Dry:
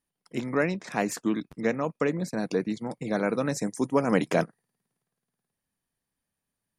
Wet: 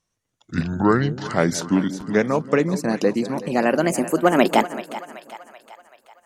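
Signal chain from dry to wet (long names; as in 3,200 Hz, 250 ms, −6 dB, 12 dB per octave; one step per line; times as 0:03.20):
gliding playback speed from 60% → 157%
echo with a time of its own for lows and highs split 610 Hz, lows 179 ms, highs 382 ms, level −13.5 dB
every ending faded ahead of time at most 470 dB per second
level +7.5 dB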